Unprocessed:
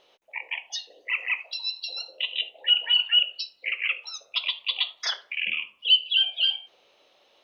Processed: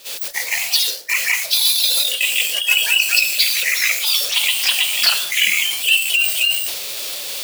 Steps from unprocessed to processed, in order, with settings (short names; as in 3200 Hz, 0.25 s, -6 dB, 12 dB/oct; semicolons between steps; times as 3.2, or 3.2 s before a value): switching spikes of -23 dBFS; in parallel at 0 dB: negative-ratio compressor -26 dBFS; on the sum: backlash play -32 dBFS; gate -23 dBFS, range -20 dB; bell 4800 Hz +7.5 dB 0.47 oct; echoes that change speed 0.149 s, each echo +2 st, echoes 2, each echo -6 dB; formant shift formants -2 st; gain +2 dB